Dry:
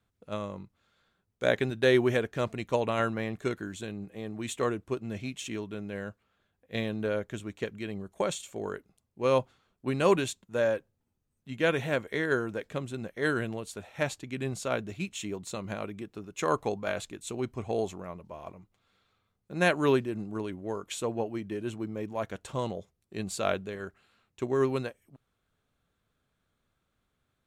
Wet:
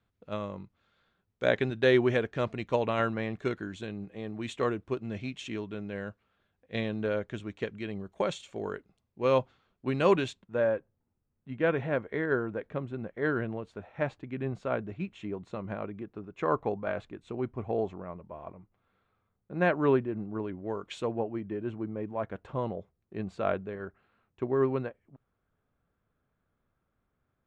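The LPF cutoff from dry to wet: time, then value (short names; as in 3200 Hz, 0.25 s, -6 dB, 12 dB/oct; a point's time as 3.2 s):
10.25 s 4200 Hz
10.66 s 1700 Hz
20.47 s 1700 Hz
20.99 s 3700 Hz
21.18 s 1700 Hz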